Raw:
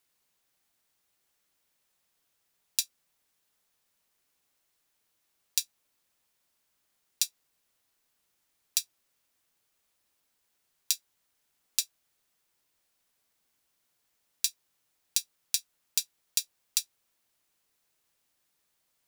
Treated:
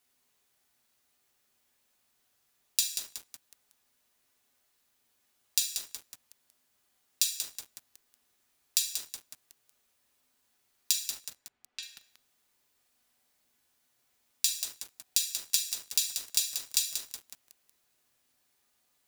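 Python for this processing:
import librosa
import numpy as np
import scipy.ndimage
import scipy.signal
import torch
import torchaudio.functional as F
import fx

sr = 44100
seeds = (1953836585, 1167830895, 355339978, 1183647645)

y = fx.lowpass(x, sr, hz=2500.0, slope=12, at=(10.92, 11.83))
y = fx.rev_fdn(y, sr, rt60_s=0.77, lf_ratio=0.8, hf_ratio=0.75, size_ms=24.0, drr_db=0.0)
y = fx.echo_crushed(y, sr, ms=185, feedback_pct=55, bits=6, wet_db=-7.0)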